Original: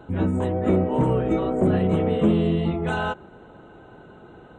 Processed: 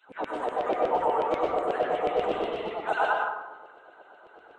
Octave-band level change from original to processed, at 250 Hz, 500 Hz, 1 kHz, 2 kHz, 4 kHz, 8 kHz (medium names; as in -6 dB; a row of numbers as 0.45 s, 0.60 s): -17.0 dB, -3.0 dB, +4.0 dB, +1.5 dB, -2.0 dB, no reading